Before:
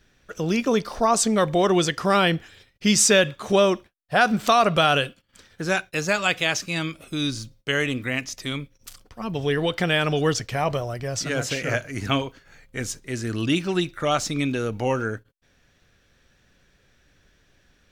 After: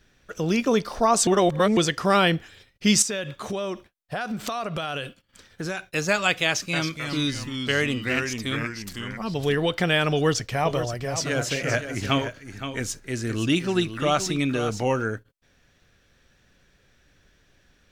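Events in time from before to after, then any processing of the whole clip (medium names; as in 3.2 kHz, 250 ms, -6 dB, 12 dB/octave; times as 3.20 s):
1.27–1.77 s: reverse
3.02–5.84 s: compression, threshold -26 dBFS
6.47–9.55 s: ever faster or slower copies 262 ms, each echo -2 st, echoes 2, each echo -6 dB
10.13–14.83 s: delay 520 ms -10 dB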